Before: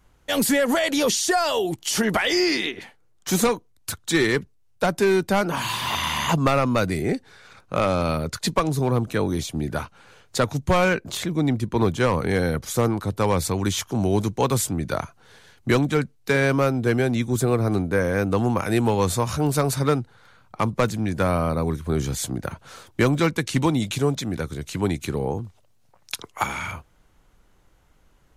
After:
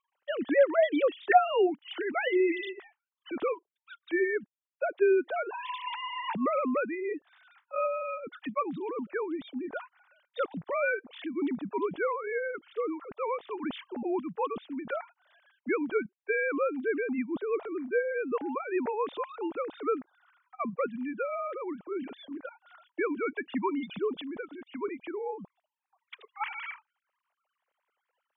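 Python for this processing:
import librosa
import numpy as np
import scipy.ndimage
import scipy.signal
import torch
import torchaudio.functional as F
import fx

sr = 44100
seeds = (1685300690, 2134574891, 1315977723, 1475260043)

y = fx.sine_speech(x, sr)
y = y * 10.0 ** (-8.5 / 20.0)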